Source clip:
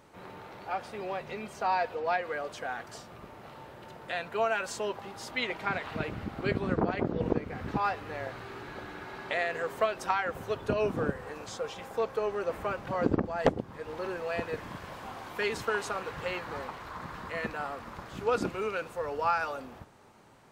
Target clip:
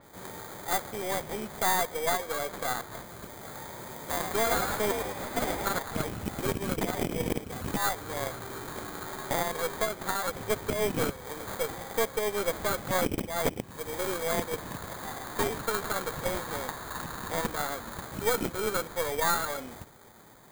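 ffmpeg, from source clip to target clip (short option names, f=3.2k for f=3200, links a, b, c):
-filter_complex "[0:a]highshelf=f=8.2k:g=8,alimiter=limit=-21.5dB:level=0:latency=1:release=331,acrusher=samples=16:mix=1:aa=0.000001,aexciter=amount=2.2:drive=5.5:freq=7.1k,aeval=exprs='0.251*(cos(1*acos(clip(val(0)/0.251,-1,1)))-cos(1*PI/2))+0.0282*(cos(6*acos(clip(val(0)/0.251,-1,1)))-cos(6*PI/2))':c=same,asettb=1/sr,asplit=3[a][b][c];[a]atrim=end=3.314[d];[b]atrim=start=3.31:end=5.79,asetpts=PTS-STARTPTS,afade=t=in:d=0.004:c=qsin,afade=t=out:st=2.476:d=0.004:c=qsin,asplit=8[e][f][g][h][i][j][k][l];[f]adelay=105,afreqshift=51,volume=-5dB[m];[g]adelay=210,afreqshift=102,volume=-10.7dB[n];[h]adelay=315,afreqshift=153,volume=-16.4dB[o];[i]adelay=420,afreqshift=204,volume=-22dB[p];[j]adelay=525,afreqshift=255,volume=-27.7dB[q];[k]adelay=630,afreqshift=306,volume=-33.4dB[r];[l]adelay=735,afreqshift=357,volume=-39.1dB[s];[e][m][n][o][p][q][r][s]amix=inputs=8:normalize=0,atrim=end_sample=109368[t];[c]atrim=start=5.786[u];[d][t]acrossfade=d=0.004:c1=hsin:c2=qsin[v];[v][u]acrossfade=d=0.004:c1=qsin:c2=hsin,adynamicequalizer=threshold=0.00355:dfrequency=5000:dqfactor=0.7:tfrequency=5000:tqfactor=0.7:attack=5:release=100:ratio=0.375:range=2:mode=cutabove:tftype=highshelf,volume=3dB"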